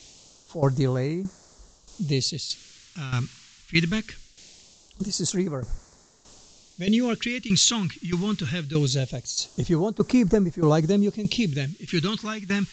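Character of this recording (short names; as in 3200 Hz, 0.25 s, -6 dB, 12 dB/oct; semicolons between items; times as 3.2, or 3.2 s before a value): a quantiser's noise floor 8-bit, dither triangular; tremolo saw down 1.6 Hz, depth 75%; phasing stages 2, 0.22 Hz, lowest notch 550–2800 Hz; Vorbis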